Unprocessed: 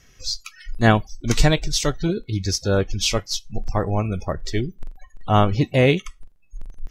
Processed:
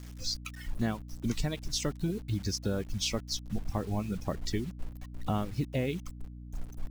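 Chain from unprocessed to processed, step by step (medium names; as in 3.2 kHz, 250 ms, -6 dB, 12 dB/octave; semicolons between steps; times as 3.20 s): reverb removal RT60 0.92 s; peaking EQ 210 Hz +8 dB 1.2 oct; compression 5:1, threshold -25 dBFS, peak gain reduction 18 dB; word length cut 8-bit, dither none; hum 60 Hz, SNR 11 dB; trim -4 dB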